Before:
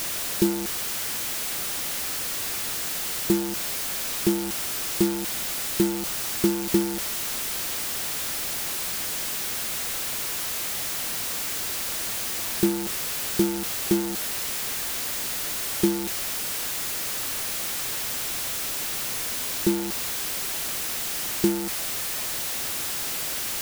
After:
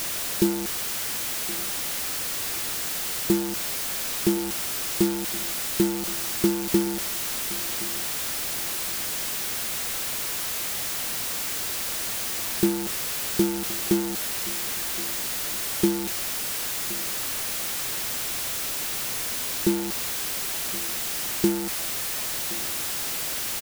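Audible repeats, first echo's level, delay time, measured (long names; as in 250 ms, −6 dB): 1, −19.0 dB, 1,070 ms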